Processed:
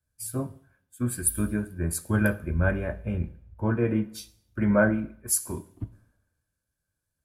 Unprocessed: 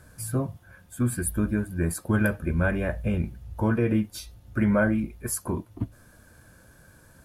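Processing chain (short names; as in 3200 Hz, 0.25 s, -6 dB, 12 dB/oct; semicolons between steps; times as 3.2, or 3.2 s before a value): two-slope reverb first 0.83 s, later 2.8 s, from -24 dB, DRR 12 dB; three-band expander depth 100%; gain -3 dB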